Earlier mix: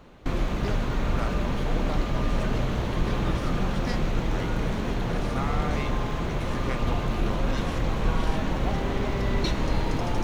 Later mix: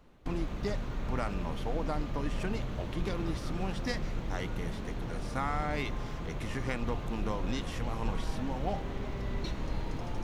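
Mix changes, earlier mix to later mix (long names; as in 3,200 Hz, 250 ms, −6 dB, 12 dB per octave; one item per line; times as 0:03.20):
background −12.0 dB
master: add low-shelf EQ 170 Hz +3.5 dB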